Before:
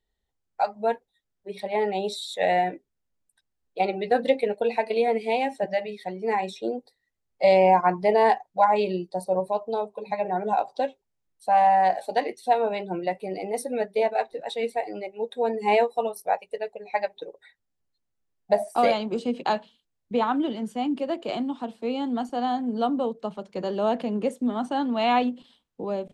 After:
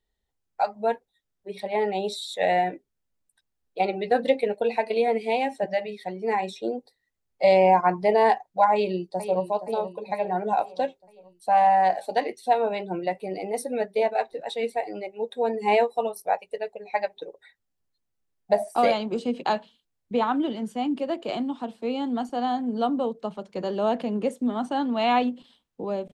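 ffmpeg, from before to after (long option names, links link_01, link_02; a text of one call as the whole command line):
ffmpeg -i in.wav -filter_complex "[0:a]asplit=2[link_01][link_02];[link_02]afade=type=in:start_time=8.72:duration=0.01,afade=type=out:start_time=9.45:duration=0.01,aecho=0:1:470|940|1410|1880|2350|2820:0.251189|0.138154|0.0759846|0.0417915|0.0229853|0.0126419[link_03];[link_01][link_03]amix=inputs=2:normalize=0" out.wav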